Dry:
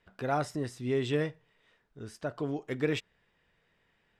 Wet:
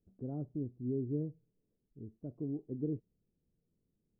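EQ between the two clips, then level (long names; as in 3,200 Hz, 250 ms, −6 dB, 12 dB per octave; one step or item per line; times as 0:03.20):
transistor ladder low-pass 390 Hz, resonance 25%
+1.5 dB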